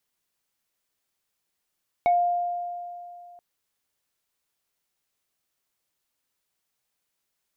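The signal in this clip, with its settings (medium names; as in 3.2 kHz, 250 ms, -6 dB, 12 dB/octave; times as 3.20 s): FM tone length 1.33 s, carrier 703 Hz, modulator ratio 2.15, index 0.52, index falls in 0.18 s exponential, decay 2.66 s, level -16 dB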